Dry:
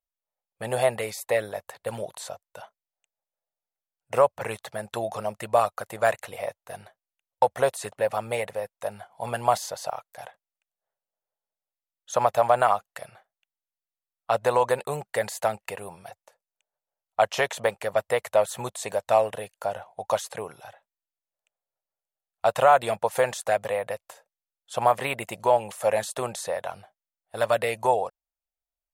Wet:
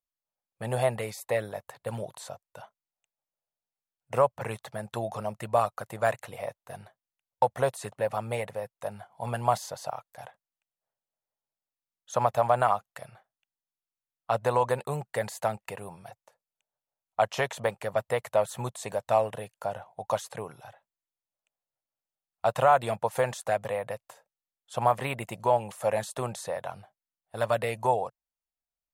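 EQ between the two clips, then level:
octave-band graphic EQ 125/250/1,000 Hz +9/+4/+3 dB
−5.5 dB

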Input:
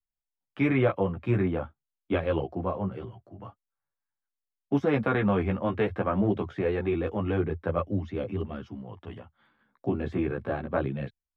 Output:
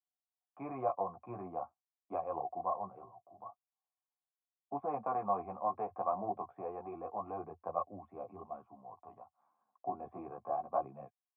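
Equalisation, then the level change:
formant resonators in series a
band-pass filter 120–3,400 Hz
+6.0 dB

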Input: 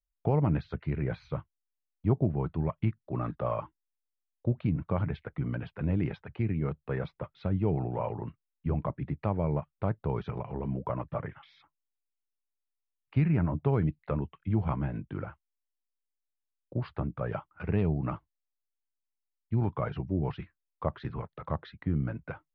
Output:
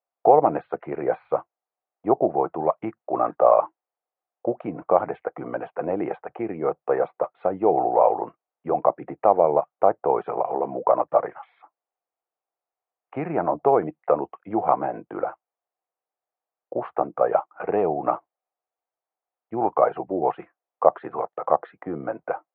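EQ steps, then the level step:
high-frequency loss of the air 88 metres
loudspeaker in its box 320–2,600 Hz, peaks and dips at 340 Hz +6 dB, 490 Hz +7 dB, 740 Hz +9 dB, 1,200 Hz +5 dB
parametric band 720 Hz +12 dB 1.5 octaves
+1.5 dB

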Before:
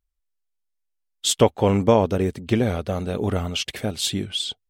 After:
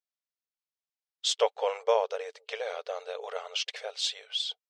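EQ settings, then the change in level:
linear-phase brick-wall high-pass 430 Hz
transistor ladder low-pass 6,800 Hz, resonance 30%
0.0 dB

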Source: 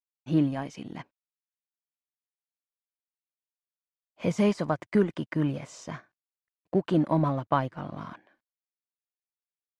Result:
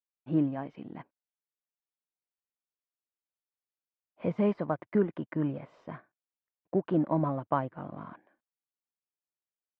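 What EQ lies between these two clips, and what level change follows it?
high-frequency loss of the air 410 metres
low-shelf EQ 140 Hz −10 dB
high-shelf EQ 2,000 Hz −8 dB
0.0 dB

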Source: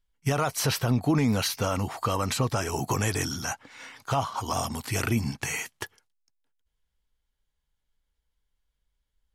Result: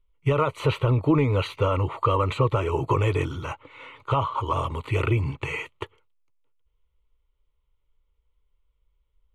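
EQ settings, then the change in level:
head-to-tape spacing loss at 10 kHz 23 dB
high-shelf EQ 6,500 Hz −4.5 dB
phaser with its sweep stopped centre 1,100 Hz, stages 8
+9.0 dB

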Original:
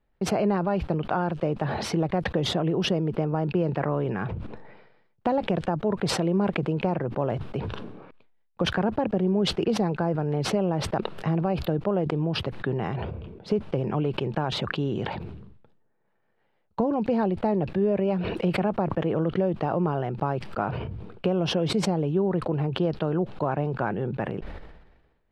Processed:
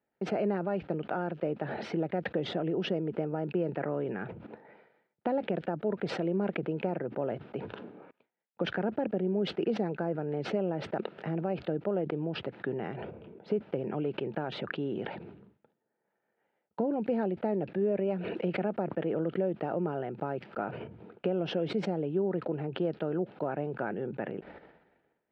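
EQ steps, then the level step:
notch filter 1,100 Hz, Q 5.8
dynamic equaliser 920 Hz, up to −6 dB, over −42 dBFS, Q 2
band-pass filter 220–2,400 Hz
−3.5 dB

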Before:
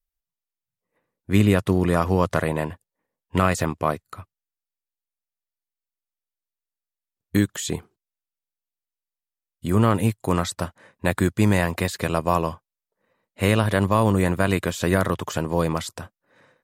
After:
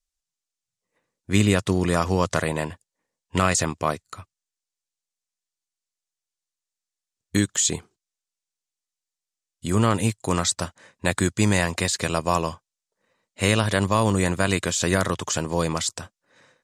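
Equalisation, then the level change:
low-pass with resonance 7,200 Hz, resonance Q 1.7
high-shelf EQ 2,900 Hz +9 dB
−2.0 dB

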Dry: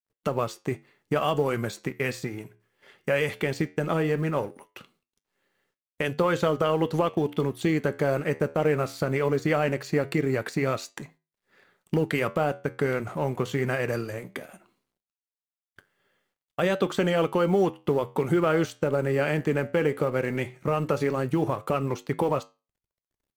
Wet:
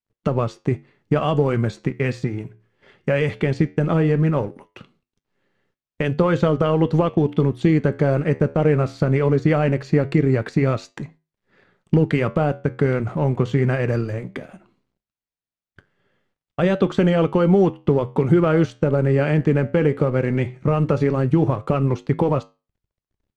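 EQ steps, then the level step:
high-frequency loss of the air 89 metres
low-shelf EQ 280 Hz +11.5 dB
+2.0 dB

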